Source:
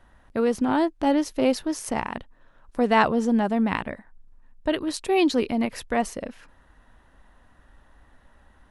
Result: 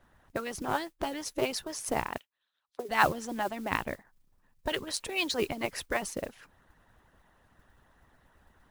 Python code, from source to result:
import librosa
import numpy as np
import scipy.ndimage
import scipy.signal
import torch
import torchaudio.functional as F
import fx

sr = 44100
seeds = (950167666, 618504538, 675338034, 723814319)

y = fx.hpss(x, sr, part='harmonic', gain_db=-18)
y = fx.auto_wah(y, sr, base_hz=390.0, top_hz=4300.0, q=3.4, full_db=-28.5, direction='down', at=(2.17, 2.89))
y = fx.mod_noise(y, sr, seeds[0], snr_db=20)